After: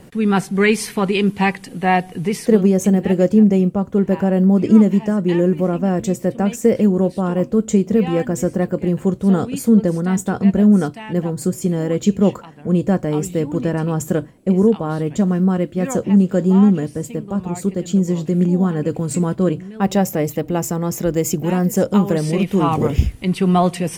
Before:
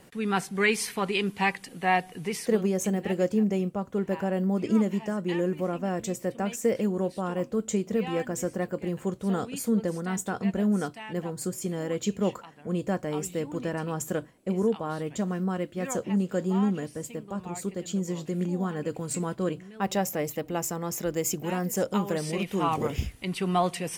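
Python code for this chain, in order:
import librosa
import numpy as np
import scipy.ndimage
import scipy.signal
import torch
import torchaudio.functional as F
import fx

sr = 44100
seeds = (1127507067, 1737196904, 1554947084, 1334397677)

y = fx.low_shelf(x, sr, hz=450.0, db=10.0)
y = F.gain(torch.from_numpy(y), 5.0).numpy()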